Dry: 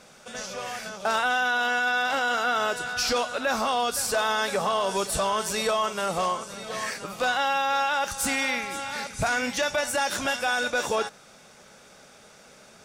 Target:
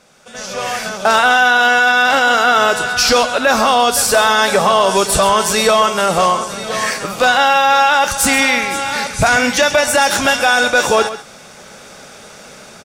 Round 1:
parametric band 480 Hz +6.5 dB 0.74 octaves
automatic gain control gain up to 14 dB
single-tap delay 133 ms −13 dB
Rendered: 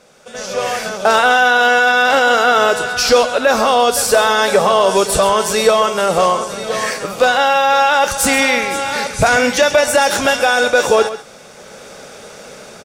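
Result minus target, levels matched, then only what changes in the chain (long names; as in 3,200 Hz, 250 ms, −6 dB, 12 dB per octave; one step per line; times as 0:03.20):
500 Hz band +3.0 dB
remove: parametric band 480 Hz +6.5 dB 0.74 octaves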